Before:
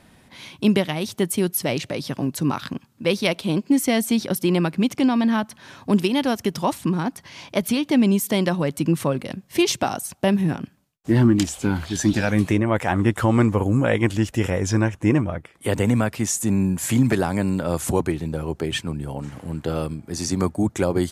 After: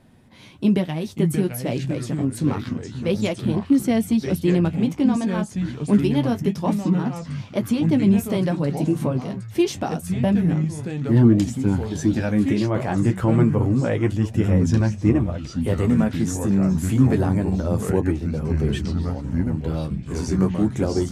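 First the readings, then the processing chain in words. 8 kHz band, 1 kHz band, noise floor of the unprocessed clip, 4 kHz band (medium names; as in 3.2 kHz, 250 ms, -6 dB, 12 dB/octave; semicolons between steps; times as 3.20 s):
-8.0 dB, -4.0 dB, -55 dBFS, -7.5 dB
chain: flange 0.27 Hz, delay 7.6 ms, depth 8.9 ms, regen -32%; tilt shelf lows +5 dB, about 660 Hz; ever faster or slower copies 381 ms, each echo -4 st, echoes 3, each echo -6 dB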